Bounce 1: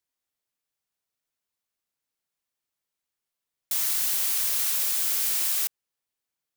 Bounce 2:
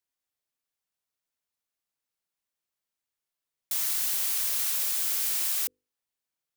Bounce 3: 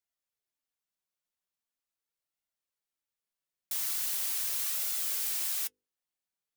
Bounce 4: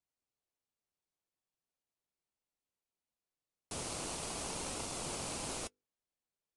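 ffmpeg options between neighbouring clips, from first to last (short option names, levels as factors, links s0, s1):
-af "bandreject=f=50:t=h:w=6,bandreject=f=100:t=h:w=6,bandreject=f=150:t=h:w=6,bandreject=f=200:t=h:w=6,bandreject=f=250:t=h:w=6,bandreject=f=300:t=h:w=6,bandreject=f=350:t=h:w=6,bandreject=f=400:t=h:w=6,bandreject=f=450:t=h:w=6,bandreject=f=500:t=h:w=6,volume=0.75"
-af "flanger=delay=1.4:depth=4.2:regen=59:speed=0.41:shape=sinusoidal"
-filter_complex "[0:a]asplit=2[s0][s1];[s1]acrusher=samples=24:mix=1:aa=0.000001,volume=0.501[s2];[s0][s2]amix=inputs=2:normalize=0,aresample=22050,aresample=44100,volume=0.531"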